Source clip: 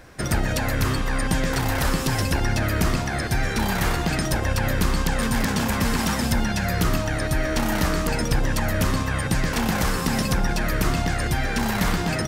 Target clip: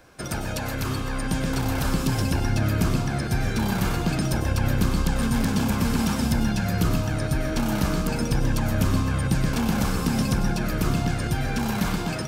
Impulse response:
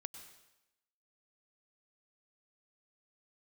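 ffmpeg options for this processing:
-filter_complex "[0:a]lowshelf=frequency=110:gain=-7.5,bandreject=frequency=1900:width=6.3,acrossover=split=310|4700[link_01][link_02][link_03];[link_01]dynaudnorm=framelen=530:gausssize=5:maxgain=8dB[link_04];[link_04][link_02][link_03]amix=inputs=3:normalize=0[link_05];[1:a]atrim=start_sample=2205,afade=type=out:start_time=0.22:duration=0.01,atrim=end_sample=10143[link_06];[link_05][link_06]afir=irnorm=-1:irlink=0"

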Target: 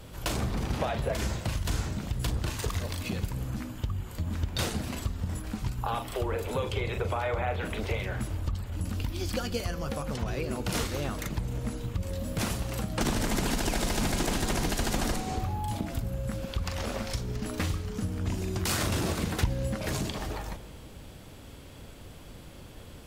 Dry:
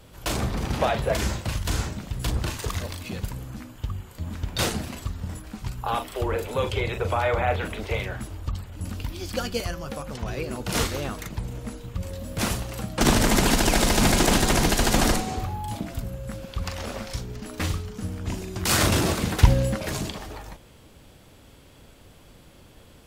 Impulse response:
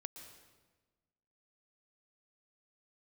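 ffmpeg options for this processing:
-filter_complex "[0:a]acompressor=threshold=-33dB:ratio=3,asplit=2[link_01][link_02];[1:a]atrim=start_sample=2205,asetrate=40572,aresample=44100,lowshelf=frequency=390:gain=7.5[link_03];[link_02][link_03]afir=irnorm=-1:irlink=0,volume=-6dB[link_04];[link_01][link_04]amix=inputs=2:normalize=0"

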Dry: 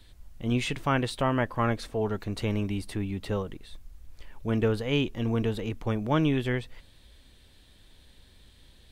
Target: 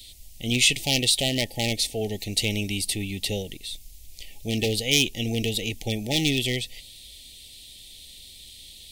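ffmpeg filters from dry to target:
ffmpeg -i in.wav -af "aeval=exprs='0.119*(abs(mod(val(0)/0.119+3,4)-2)-1)':channel_layout=same,aexciter=amount=5.6:drive=6.5:freq=2400,afftfilt=real='re*(1-between(b*sr/4096,860,1800))':imag='im*(1-between(b*sr/4096,860,1800))':win_size=4096:overlap=0.75" out.wav

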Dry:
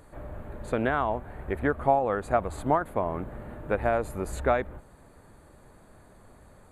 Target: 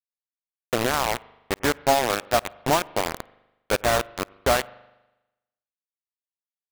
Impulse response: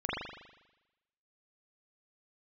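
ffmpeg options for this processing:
-filter_complex "[0:a]adynamicequalizer=threshold=0.00891:dfrequency=1000:dqfactor=2.4:tfrequency=1000:tqfactor=2.4:attack=5:release=100:ratio=0.375:range=2:mode=cutabove:tftype=bell,acrusher=bits=3:mix=0:aa=0.000001,asplit=2[link_01][link_02];[1:a]atrim=start_sample=2205,adelay=52[link_03];[link_02][link_03]afir=irnorm=-1:irlink=0,volume=-30.5dB[link_04];[link_01][link_04]amix=inputs=2:normalize=0,volume=2.5dB"

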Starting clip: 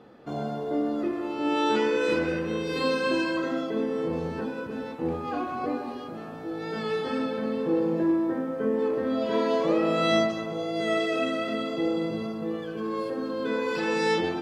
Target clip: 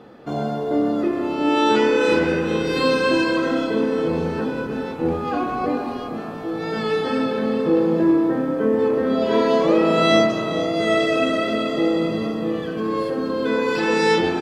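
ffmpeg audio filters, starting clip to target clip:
ffmpeg -i in.wav -filter_complex "[0:a]asplit=6[link_01][link_02][link_03][link_04][link_05][link_06];[link_02]adelay=431,afreqshift=-33,volume=-12.5dB[link_07];[link_03]adelay=862,afreqshift=-66,volume=-19.2dB[link_08];[link_04]adelay=1293,afreqshift=-99,volume=-26dB[link_09];[link_05]adelay=1724,afreqshift=-132,volume=-32.7dB[link_10];[link_06]adelay=2155,afreqshift=-165,volume=-39.5dB[link_11];[link_01][link_07][link_08][link_09][link_10][link_11]amix=inputs=6:normalize=0,volume=7dB" out.wav

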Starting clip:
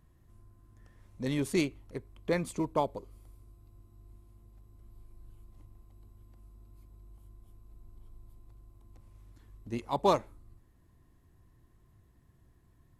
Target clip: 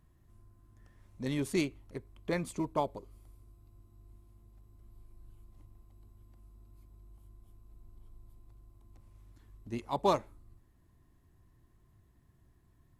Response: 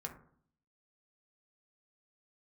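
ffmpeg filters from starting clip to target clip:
-af "bandreject=frequency=490:width=12,volume=-2dB"

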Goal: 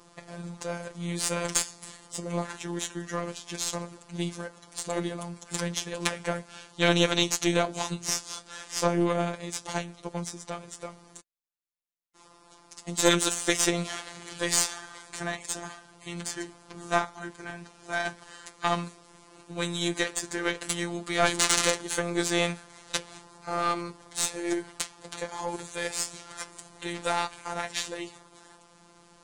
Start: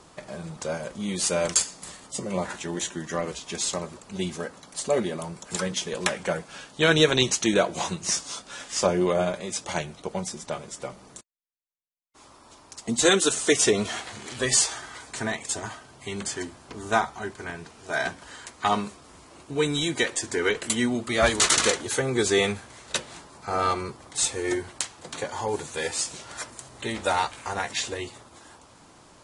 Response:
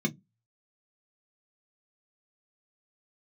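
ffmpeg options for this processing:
-af "afftfilt=real='hypot(re,im)*cos(PI*b)':imag='0':win_size=1024:overlap=0.75,aeval=exprs='0.944*(cos(1*acos(clip(val(0)/0.944,-1,1)))-cos(1*PI/2))+0.0841*(cos(6*acos(clip(val(0)/0.944,-1,1)))-cos(6*PI/2))':channel_layout=same,volume=-1dB"

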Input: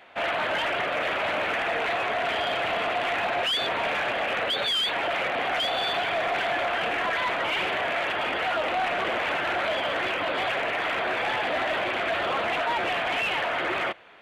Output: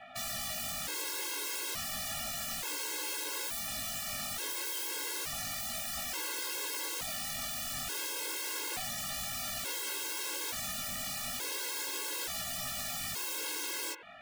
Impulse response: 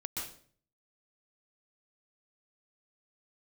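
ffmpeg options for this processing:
-af "aeval=exprs='(mod(42.2*val(0)+1,2)-1)/42.2':channel_layout=same,flanger=delay=16:depth=5.2:speed=0.32,afftfilt=real='re*gt(sin(2*PI*0.57*pts/sr)*(1-2*mod(floor(b*sr/1024/280),2)),0)':imag='im*gt(sin(2*PI*0.57*pts/sr)*(1-2*mod(floor(b*sr/1024/280),2)),0)':win_size=1024:overlap=0.75,volume=6dB"

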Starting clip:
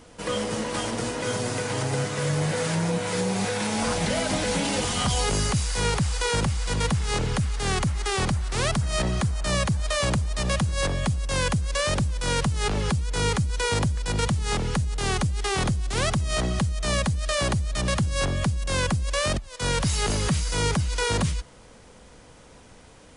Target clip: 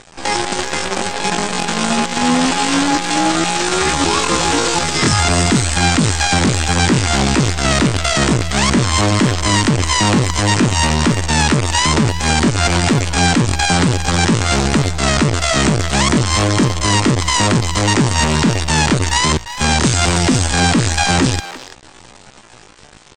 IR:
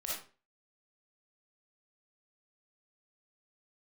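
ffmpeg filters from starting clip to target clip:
-filter_complex "[0:a]acontrast=37,aresample=11025,acrusher=bits=4:dc=4:mix=0:aa=0.000001,aresample=44100,asplit=2[link_01][link_02];[link_02]adelay=340,highpass=300,lowpass=3400,asoftclip=type=hard:threshold=-16.5dB,volume=-11dB[link_03];[link_01][link_03]amix=inputs=2:normalize=0,asetrate=74167,aresample=44100,atempo=0.594604,volume=4.5dB"

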